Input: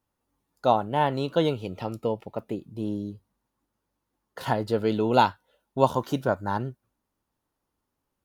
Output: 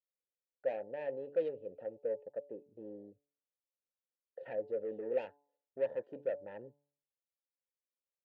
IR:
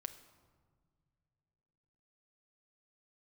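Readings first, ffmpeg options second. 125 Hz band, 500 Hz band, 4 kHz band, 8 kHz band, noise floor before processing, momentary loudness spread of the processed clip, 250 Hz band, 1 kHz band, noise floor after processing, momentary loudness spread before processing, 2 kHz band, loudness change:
-30.5 dB, -9.5 dB, under -30 dB, under -25 dB, -82 dBFS, 16 LU, -22.0 dB, -28.0 dB, under -85 dBFS, 12 LU, -17.5 dB, -13.0 dB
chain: -filter_complex "[0:a]afwtdn=0.0158,asoftclip=type=tanh:threshold=-22dB,asplit=3[a][b][c];[a]bandpass=f=530:t=q:w=8,volume=0dB[d];[b]bandpass=f=1.84k:t=q:w=8,volume=-6dB[e];[c]bandpass=f=2.48k:t=q:w=8,volume=-9dB[f];[d][e][f]amix=inputs=3:normalize=0,highshelf=f=2.2k:g=-10.5,bandreject=f=143.8:t=h:w=4,bandreject=f=287.6:t=h:w=4,bandreject=f=431.4:t=h:w=4,bandreject=f=575.2:t=h:w=4,bandreject=f=719:t=h:w=4,bandreject=f=862.8:t=h:w=4,bandreject=f=1.0066k:t=h:w=4,volume=1dB"

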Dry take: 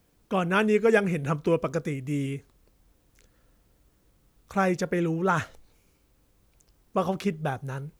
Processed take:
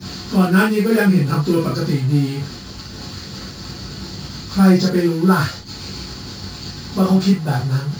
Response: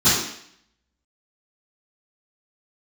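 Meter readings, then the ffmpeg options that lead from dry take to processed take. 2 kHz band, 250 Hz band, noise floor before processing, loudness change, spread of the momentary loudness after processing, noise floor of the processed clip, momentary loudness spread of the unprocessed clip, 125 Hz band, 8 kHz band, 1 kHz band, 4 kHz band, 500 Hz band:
+6.5 dB, +13.5 dB, -66 dBFS, +10.0 dB, 16 LU, -33 dBFS, 10 LU, +14.0 dB, +12.5 dB, +5.0 dB, +16.0 dB, +4.5 dB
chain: -filter_complex "[0:a]aeval=exprs='val(0)+0.5*0.0224*sgn(val(0))':c=same,acrusher=samples=4:mix=1:aa=0.000001,equalizer=f=4.5k:t=o:w=0.3:g=12.5[a];[1:a]atrim=start_sample=2205,atrim=end_sample=3969[b];[a][b]afir=irnorm=-1:irlink=0,volume=-15dB"

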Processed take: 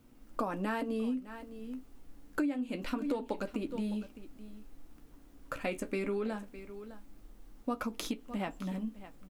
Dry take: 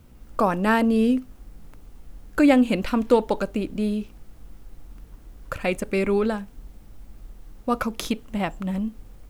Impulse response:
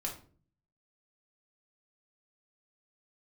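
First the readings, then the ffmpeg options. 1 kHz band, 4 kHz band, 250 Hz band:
-13.5 dB, -11.0 dB, -13.0 dB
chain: -af "flanger=delay=8.4:depth=6.5:regen=-46:speed=0.26:shape=sinusoidal,equalizer=f=280:t=o:w=0.31:g=10.5,aecho=1:1:608:0.126,acompressor=threshold=-25dB:ratio=10,equalizer=f=71:t=o:w=2:g=-10.5,volume=-3.5dB"

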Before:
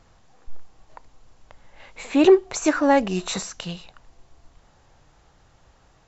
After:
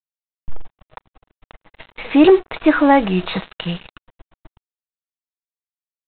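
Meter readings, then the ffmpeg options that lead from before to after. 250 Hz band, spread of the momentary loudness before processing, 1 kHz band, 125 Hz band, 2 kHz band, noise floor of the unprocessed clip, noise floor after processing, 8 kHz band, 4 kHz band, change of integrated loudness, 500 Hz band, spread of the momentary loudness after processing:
+6.0 dB, 19 LU, +6.0 dB, +8.0 dB, +6.0 dB, -58 dBFS, under -85 dBFS, n/a, +4.0 dB, +5.0 dB, +3.0 dB, 16 LU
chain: -af "aecho=1:1:6.3:0.35,acontrast=68,aresample=8000,acrusher=bits=4:mix=0:aa=0.5,aresample=44100"

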